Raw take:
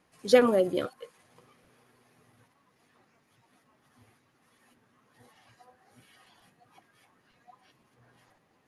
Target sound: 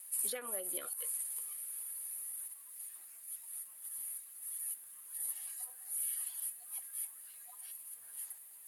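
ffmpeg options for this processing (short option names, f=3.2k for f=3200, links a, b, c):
-filter_complex "[0:a]lowpass=11k,acrossover=split=2700[a][b];[b]acompressor=threshold=-60dB:ratio=4:attack=1:release=60[c];[a][c]amix=inputs=2:normalize=0,aderivative,acompressor=threshold=-56dB:ratio=3,aexciter=amount=9.3:drive=9.5:freq=8.7k,volume=11dB"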